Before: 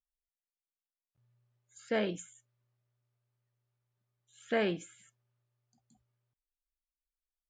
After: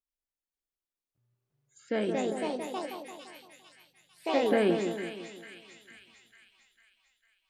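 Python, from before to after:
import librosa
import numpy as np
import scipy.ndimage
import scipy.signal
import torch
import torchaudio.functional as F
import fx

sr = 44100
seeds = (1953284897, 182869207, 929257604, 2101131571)

y = fx.peak_eq(x, sr, hz=310.0, db=8.5, octaves=0.95)
y = fx.echo_pitch(y, sr, ms=534, semitones=3, count=3, db_per_echo=-3.0)
y = fx.echo_split(y, sr, split_hz=1500.0, low_ms=171, high_ms=450, feedback_pct=52, wet_db=-6.5)
y = fx.rider(y, sr, range_db=4, speed_s=2.0)
y = y * librosa.db_to_amplitude(-1.5)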